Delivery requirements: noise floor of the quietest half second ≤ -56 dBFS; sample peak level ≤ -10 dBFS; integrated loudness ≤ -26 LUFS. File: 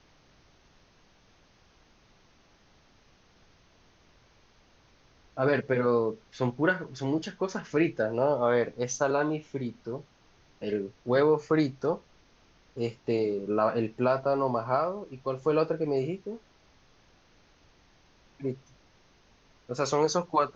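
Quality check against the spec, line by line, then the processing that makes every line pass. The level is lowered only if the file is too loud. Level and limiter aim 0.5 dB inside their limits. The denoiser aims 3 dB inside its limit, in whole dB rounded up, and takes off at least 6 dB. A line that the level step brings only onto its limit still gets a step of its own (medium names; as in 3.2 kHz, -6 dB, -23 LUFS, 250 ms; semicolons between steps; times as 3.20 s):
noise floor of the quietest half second -62 dBFS: pass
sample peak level -11.5 dBFS: pass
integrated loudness -29.0 LUFS: pass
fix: none needed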